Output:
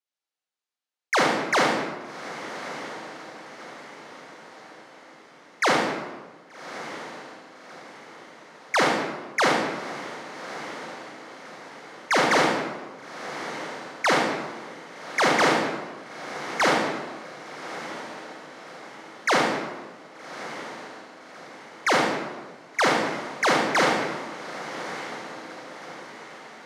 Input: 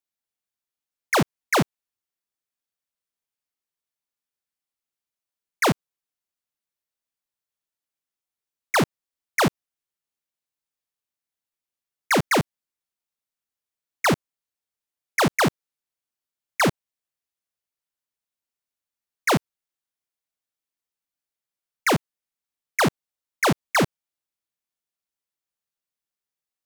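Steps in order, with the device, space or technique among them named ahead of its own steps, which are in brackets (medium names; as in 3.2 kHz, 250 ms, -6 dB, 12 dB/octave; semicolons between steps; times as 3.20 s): supermarket ceiling speaker (band-pass 330–6800 Hz; reverberation RT60 1.3 s, pre-delay 32 ms, DRR -3 dB); echo that smears into a reverb 1191 ms, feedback 49%, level -12 dB; trim -2 dB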